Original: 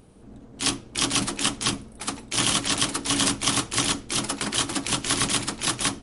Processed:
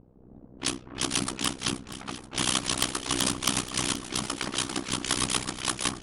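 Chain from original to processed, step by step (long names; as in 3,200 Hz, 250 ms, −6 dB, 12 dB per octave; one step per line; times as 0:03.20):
amplitude modulation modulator 63 Hz, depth 95%
wrap-around overflow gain 8 dB
low-pass that shuts in the quiet parts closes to 680 Hz, open at −25.5 dBFS
on a send: delay that swaps between a low-pass and a high-pass 239 ms, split 1,500 Hz, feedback 68%, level −11 dB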